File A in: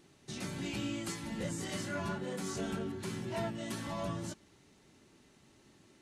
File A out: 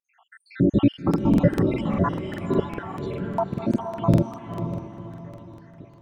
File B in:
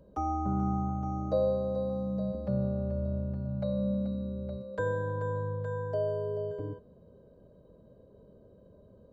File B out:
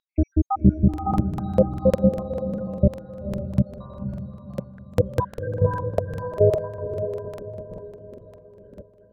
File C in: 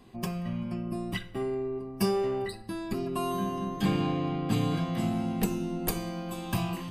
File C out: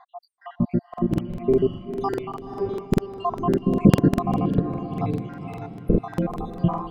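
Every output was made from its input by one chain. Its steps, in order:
random spectral dropouts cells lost 85%; Bessel low-pass 1100 Hz, order 2; diffused feedback echo 0.514 s, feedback 41%, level -7.5 dB; crackling interface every 0.20 s, samples 2048, repeat, from 0.89; match loudness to -24 LUFS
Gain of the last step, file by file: +22.0, +19.0, +15.5 dB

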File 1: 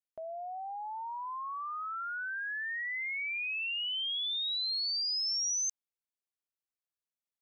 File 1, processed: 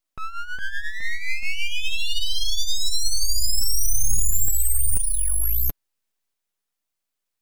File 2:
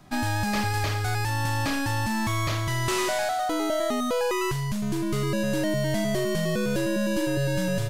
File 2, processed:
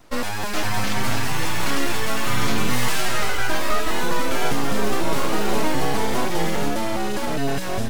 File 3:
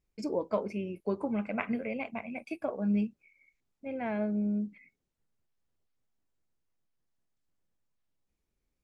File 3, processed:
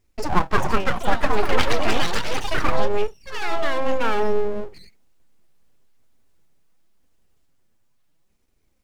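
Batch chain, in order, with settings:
flange 0.58 Hz, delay 2.8 ms, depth 6.4 ms, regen +12%; full-wave rectifier; echoes that change speed 0.447 s, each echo +4 st, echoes 3; match loudness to -24 LUFS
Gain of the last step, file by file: +16.5, +6.5, +17.0 dB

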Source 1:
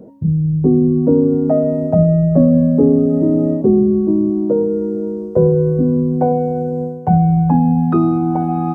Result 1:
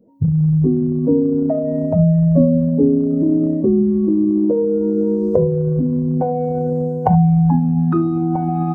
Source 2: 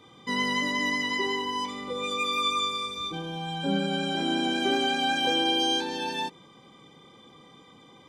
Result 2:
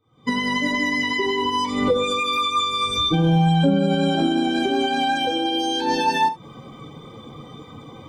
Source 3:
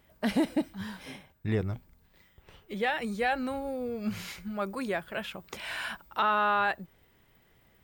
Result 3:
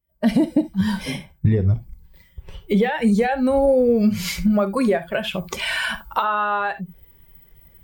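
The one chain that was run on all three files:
per-bin expansion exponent 1.5; recorder AGC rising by 69 dB/s; tilt shelf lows +4 dB, about 1200 Hz; non-linear reverb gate 90 ms flat, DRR 10.5 dB; gain -4.5 dB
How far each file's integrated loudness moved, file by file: -1.5, +6.5, +11.0 LU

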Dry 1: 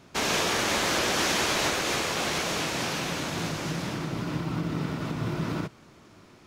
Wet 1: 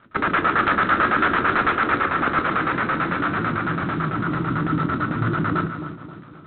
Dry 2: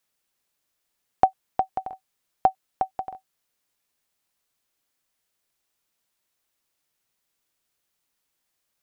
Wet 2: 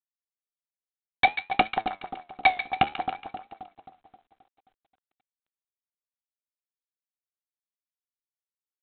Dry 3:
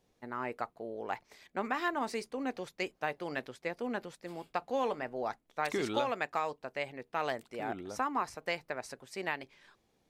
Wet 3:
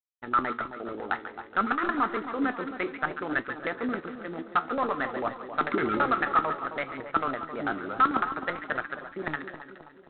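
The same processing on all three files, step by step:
bell 1300 Hz +13.5 dB 0.35 oct; sample leveller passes 2; dynamic EQ 100 Hz, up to +4 dB, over -42 dBFS, Q 2.7; LFO low-pass square 9 Hz 310–1700 Hz; wrapped overs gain 4.5 dB; on a send: split-band echo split 1100 Hz, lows 0.265 s, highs 0.14 s, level -9.5 dB; on the sum: flange 0.57 Hz, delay 8.4 ms, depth 7.3 ms, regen +72%; G.726 24 kbps 8000 Hz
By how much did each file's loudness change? +6.5, +2.0, +7.5 LU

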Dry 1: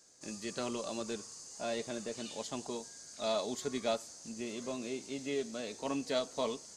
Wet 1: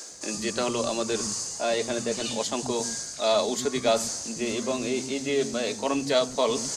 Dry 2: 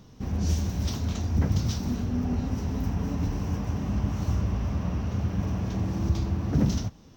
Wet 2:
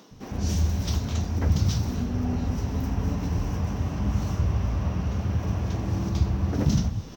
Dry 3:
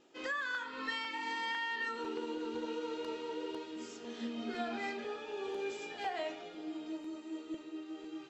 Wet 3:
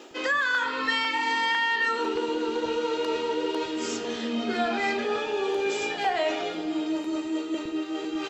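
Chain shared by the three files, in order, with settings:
reverse; upward compressor, threshold -32 dBFS; reverse; bands offset in time highs, lows 0.11 s, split 230 Hz; match loudness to -27 LUFS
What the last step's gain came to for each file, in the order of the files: +10.5, +2.5, +11.0 dB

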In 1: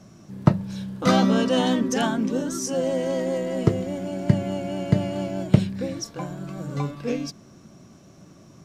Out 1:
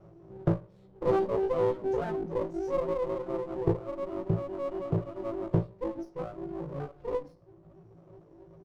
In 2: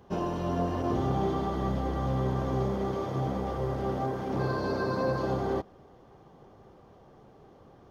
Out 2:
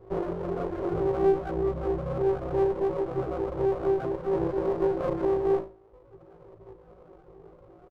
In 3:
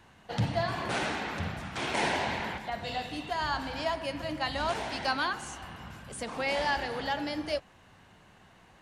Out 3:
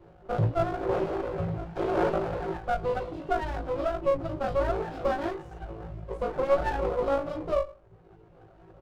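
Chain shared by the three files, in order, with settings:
tape spacing loss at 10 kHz 28 dB; fixed phaser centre 550 Hz, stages 4; on a send: flutter echo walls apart 3.1 m, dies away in 0.4 s; on the sum: reverb removal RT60 0.93 s; EQ curve 230 Hz 0 dB, 370 Hz +5 dB, 2700 Hz -15 dB; in parallel at +1 dB: compressor, threshold -35 dBFS; on the sum: notches 60/120/180/240/300/360/420/480/540/600 Hz; comb 5.5 ms, depth 42%; running maximum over 17 samples; normalise peaks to -12 dBFS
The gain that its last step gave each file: -6.0, -0.5, +4.0 dB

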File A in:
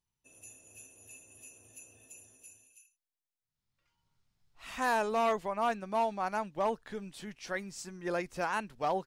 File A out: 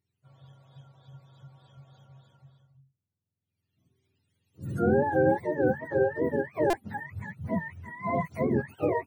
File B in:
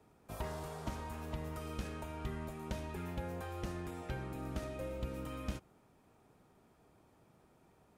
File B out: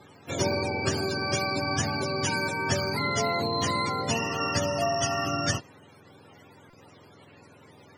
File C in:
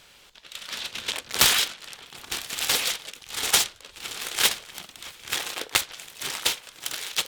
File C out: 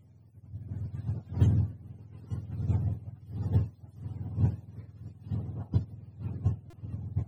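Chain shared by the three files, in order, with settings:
spectrum mirrored in octaves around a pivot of 600 Hz; stuck buffer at 6.7, samples 128, times 10; normalise peaks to -12 dBFS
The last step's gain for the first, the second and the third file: +6.5, +17.0, -9.0 dB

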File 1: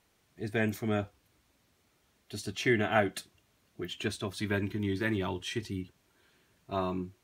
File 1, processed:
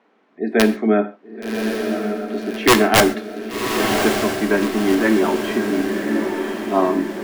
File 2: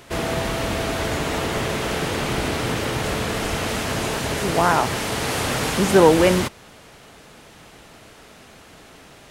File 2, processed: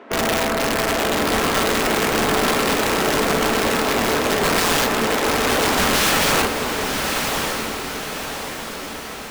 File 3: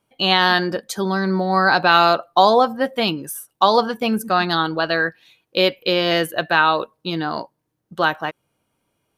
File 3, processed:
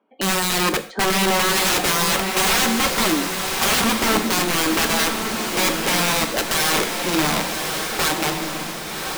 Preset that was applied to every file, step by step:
elliptic high-pass 230 Hz, stop band 70 dB; spectral gate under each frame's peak -30 dB strong; LPF 1700 Hz 12 dB/oct; low shelf 290 Hz +3.5 dB; in parallel at +0.5 dB: limiter -13.5 dBFS; on the sum: wrapped overs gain 13.5 dB; on a send: diffused feedback echo 1.119 s, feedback 51%, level -4.5 dB; on the sum: non-linear reverb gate 0.16 s falling, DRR 8.5 dB; match loudness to -19 LUFS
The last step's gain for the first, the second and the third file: +8.0, -1.0, -1.5 dB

